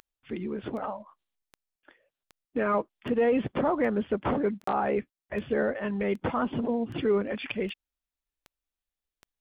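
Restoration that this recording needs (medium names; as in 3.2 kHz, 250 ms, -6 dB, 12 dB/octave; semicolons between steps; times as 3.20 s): de-click; interpolate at 4.64 s, 34 ms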